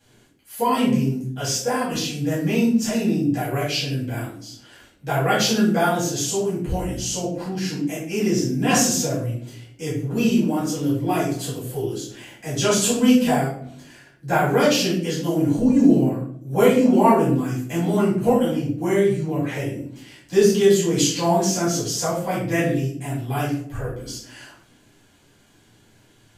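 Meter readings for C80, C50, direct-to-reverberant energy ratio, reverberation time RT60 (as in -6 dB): 7.5 dB, 3.5 dB, -10.0 dB, 0.65 s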